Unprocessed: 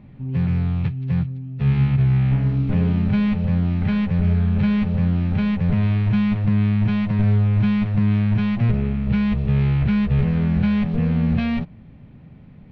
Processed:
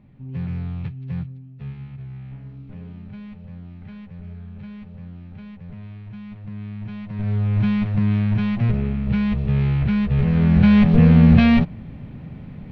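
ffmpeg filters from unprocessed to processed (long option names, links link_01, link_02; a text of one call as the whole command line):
ffmpeg -i in.wav -af "volume=19.5dB,afade=type=out:start_time=1.29:duration=0.48:silence=0.266073,afade=type=in:start_time=6.19:duration=0.89:silence=0.473151,afade=type=in:start_time=7.08:duration=0.52:silence=0.281838,afade=type=in:start_time=10.16:duration=0.78:silence=0.354813" out.wav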